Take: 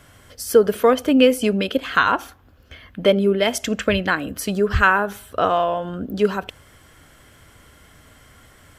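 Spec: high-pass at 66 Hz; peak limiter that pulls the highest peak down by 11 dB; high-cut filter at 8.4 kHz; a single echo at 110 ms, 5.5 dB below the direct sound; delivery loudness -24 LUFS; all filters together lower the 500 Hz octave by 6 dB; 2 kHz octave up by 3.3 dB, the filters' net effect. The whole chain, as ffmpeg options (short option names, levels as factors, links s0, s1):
-af "highpass=66,lowpass=8400,equalizer=f=500:t=o:g=-7.5,equalizer=f=2000:t=o:g=5.5,alimiter=limit=0.282:level=0:latency=1,aecho=1:1:110:0.531,volume=0.794"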